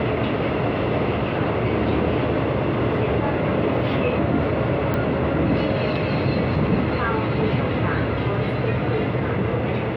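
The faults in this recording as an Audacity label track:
4.940000	4.940000	pop -13 dBFS

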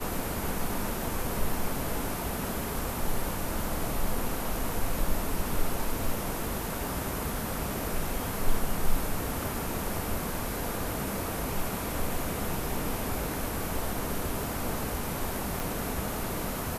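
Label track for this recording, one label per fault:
15.600000	15.600000	pop

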